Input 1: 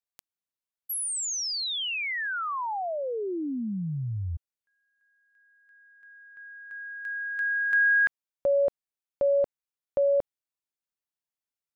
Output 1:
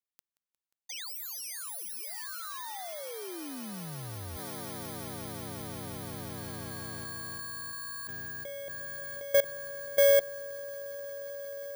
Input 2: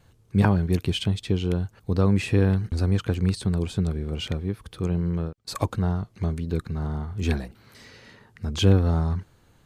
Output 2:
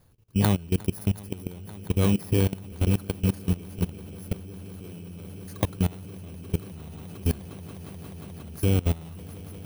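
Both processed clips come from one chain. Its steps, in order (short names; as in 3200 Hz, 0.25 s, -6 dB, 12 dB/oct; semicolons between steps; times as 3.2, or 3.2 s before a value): FFT order left unsorted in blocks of 16 samples; swelling echo 0.178 s, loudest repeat 8, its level -14 dB; level quantiser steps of 20 dB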